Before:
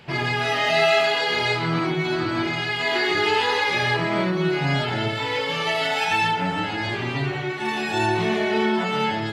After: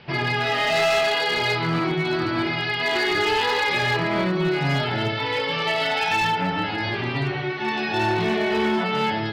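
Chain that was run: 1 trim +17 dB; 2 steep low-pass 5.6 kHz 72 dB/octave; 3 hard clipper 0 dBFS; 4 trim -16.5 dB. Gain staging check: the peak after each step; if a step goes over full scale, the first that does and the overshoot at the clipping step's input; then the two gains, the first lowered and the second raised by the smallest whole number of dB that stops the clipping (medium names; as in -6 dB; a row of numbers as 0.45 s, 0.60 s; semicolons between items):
+9.0 dBFS, +9.0 dBFS, 0.0 dBFS, -16.5 dBFS; step 1, 9.0 dB; step 1 +8 dB, step 4 -7.5 dB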